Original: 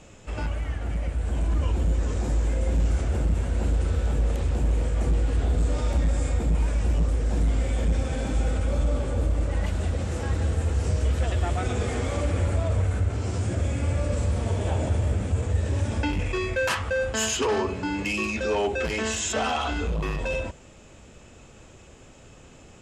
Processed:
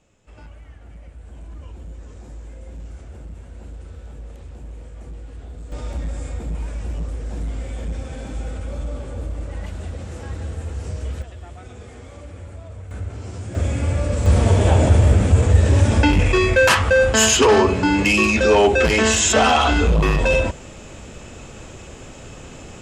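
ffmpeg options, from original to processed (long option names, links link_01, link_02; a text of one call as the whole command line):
ffmpeg -i in.wav -af "asetnsamples=nb_out_samples=441:pad=0,asendcmd='5.72 volume volume -4dB;11.22 volume volume -12.5dB;12.91 volume volume -4.5dB;13.55 volume volume 4.5dB;14.26 volume volume 11dB',volume=-13dB" out.wav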